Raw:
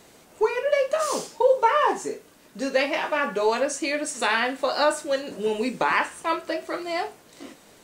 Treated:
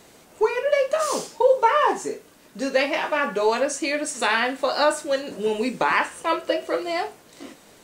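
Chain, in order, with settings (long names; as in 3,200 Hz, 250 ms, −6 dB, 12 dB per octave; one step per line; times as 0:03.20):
0:06.13–0:06.91: hollow resonant body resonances 510/2,900 Hz, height 10 dB → 14 dB
level +1.5 dB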